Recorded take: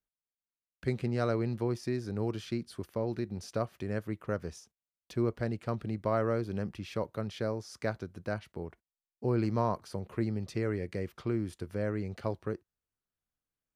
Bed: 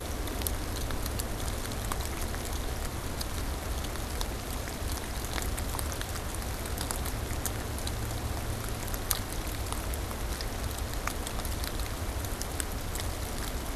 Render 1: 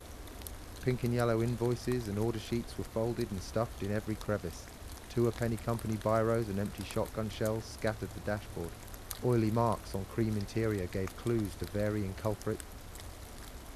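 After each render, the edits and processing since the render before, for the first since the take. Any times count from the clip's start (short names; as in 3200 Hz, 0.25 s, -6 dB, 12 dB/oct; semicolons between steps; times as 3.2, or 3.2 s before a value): add bed -12.5 dB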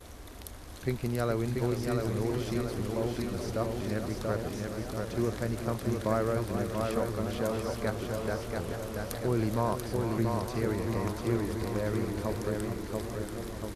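feedback echo 0.685 s, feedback 52%, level -4 dB; warbling echo 0.428 s, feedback 78%, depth 121 cents, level -10.5 dB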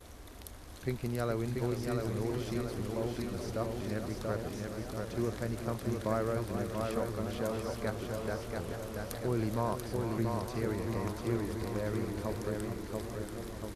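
gain -3.5 dB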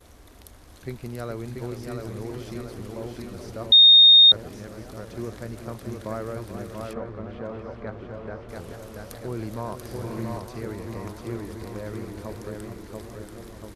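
3.72–4.32 bleep 3690 Hz -8.5 dBFS; 6.93–8.49 LPF 2200 Hz; 9.75–10.38 flutter echo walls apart 10 m, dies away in 0.83 s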